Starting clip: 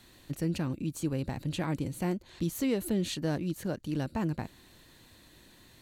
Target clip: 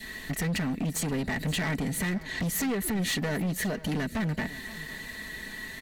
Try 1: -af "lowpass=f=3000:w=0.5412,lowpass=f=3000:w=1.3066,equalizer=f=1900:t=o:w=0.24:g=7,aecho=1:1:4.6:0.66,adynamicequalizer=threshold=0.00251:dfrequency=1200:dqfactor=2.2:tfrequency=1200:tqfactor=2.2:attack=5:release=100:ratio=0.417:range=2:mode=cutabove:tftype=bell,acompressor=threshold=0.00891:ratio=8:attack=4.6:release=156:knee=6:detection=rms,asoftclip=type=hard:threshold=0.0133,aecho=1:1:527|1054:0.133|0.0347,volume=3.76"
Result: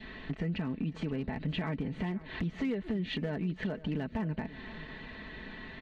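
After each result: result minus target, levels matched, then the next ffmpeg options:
compression: peak gain reduction +7.5 dB; 2 kHz band -4.0 dB; 4 kHz band -3.0 dB
-af "lowpass=f=3000:w=0.5412,lowpass=f=3000:w=1.3066,equalizer=f=1900:t=o:w=0.24:g=7,aecho=1:1:4.6:0.66,adynamicequalizer=threshold=0.00251:dfrequency=1200:dqfactor=2.2:tfrequency=1200:tqfactor=2.2:attack=5:release=100:ratio=0.417:range=2:mode=cutabove:tftype=bell,acompressor=threshold=0.0251:ratio=8:attack=4.6:release=156:knee=6:detection=rms,asoftclip=type=hard:threshold=0.0133,aecho=1:1:527|1054:0.133|0.0347,volume=3.76"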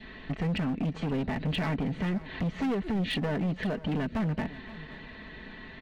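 2 kHz band -5.0 dB; 4 kHz band -3.0 dB
-af "lowpass=f=3000:w=0.5412,lowpass=f=3000:w=1.3066,equalizer=f=1900:t=o:w=0.24:g=18,aecho=1:1:4.6:0.66,adynamicequalizer=threshold=0.00251:dfrequency=1200:dqfactor=2.2:tfrequency=1200:tqfactor=2.2:attack=5:release=100:ratio=0.417:range=2:mode=cutabove:tftype=bell,acompressor=threshold=0.0251:ratio=8:attack=4.6:release=156:knee=6:detection=rms,asoftclip=type=hard:threshold=0.0133,aecho=1:1:527|1054:0.133|0.0347,volume=3.76"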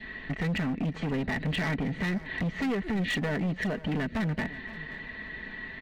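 4 kHz band -3.0 dB
-af "equalizer=f=1900:t=o:w=0.24:g=18,aecho=1:1:4.6:0.66,adynamicequalizer=threshold=0.00251:dfrequency=1200:dqfactor=2.2:tfrequency=1200:tqfactor=2.2:attack=5:release=100:ratio=0.417:range=2:mode=cutabove:tftype=bell,acompressor=threshold=0.0251:ratio=8:attack=4.6:release=156:knee=6:detection=rms,asoftclip=type=hard:threshold=0.0133,aecho=1:1:527|1054:0.133|0.0347,volume=3.76"

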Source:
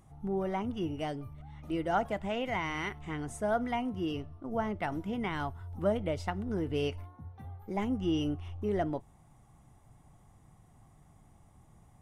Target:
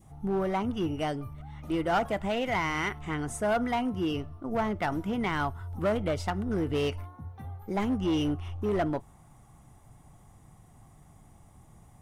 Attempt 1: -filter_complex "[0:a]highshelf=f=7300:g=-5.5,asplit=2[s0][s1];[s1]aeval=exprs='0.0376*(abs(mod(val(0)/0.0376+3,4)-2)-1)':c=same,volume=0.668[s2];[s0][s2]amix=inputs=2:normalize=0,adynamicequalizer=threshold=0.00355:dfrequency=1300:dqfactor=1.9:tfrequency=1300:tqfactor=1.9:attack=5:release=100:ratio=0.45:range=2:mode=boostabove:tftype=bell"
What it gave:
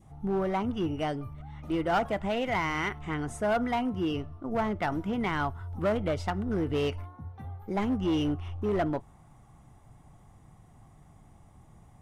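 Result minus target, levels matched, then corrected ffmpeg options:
8 kHz band -4.5 dB
-filter_complex "[0:a]highshelf=f=7300:g=4.5,asplit=2[s0][s1];[s1]aeval=exprs='0.0376*(abs(mod(val(0)/0.0376+3,4)-2)-1)':c=same,volume=0.668[s2];[s0][s2]amix=inputs=2:normalize=0,adynamicequalizer=threshold=0.00355:dfrequency=1300:dqfactor=1.9:tfrequency=1300:tqfactor=1.9:attack=5:release=100:ratio=0.45:range=2:mode=boostabove:tftype=bell"

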